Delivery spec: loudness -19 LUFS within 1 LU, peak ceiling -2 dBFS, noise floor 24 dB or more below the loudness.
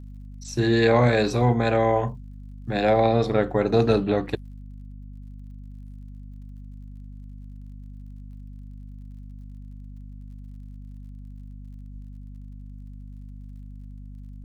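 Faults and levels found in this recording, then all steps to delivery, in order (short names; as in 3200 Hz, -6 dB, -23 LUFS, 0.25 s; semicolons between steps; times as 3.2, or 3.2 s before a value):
ticks 47/s; hum 50 Hz; harmonics up to 250 Hz; hum level -37 dBFS; loudness -22.0 LUFS; peak -5.5 dBFS; loudness target -19.0 LUFS
-> de-click; de-hum 50 Hz, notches 5; gain +3 dB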